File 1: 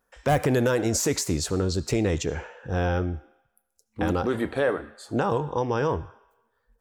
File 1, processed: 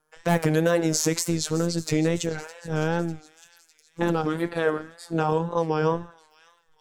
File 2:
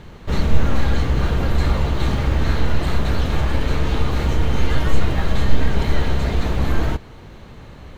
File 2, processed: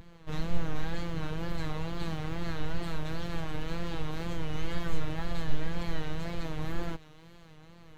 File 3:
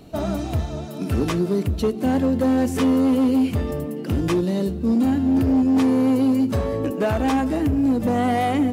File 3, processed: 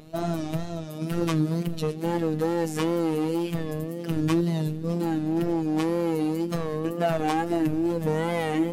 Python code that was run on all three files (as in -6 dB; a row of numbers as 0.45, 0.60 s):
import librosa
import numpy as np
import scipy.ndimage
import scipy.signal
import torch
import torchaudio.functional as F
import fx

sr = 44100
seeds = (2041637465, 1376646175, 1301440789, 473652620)

y = fx.echo_wet_highpass(x, sr, ms=605, feedback_pct=55, hz=2600.0, wet_db=-16)
y = fx.robotise(y, sr, hz=163.0)
y = fx.wow_flutter(y, sr, seeds[0], rate_hz=2.1, depth_cents=94.0)
y = y * 10.0 ** (-26 / 20.0) / np.sqrt(np.mean(np.square(y)))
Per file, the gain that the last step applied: +3.0, -10.5, -1.0 dB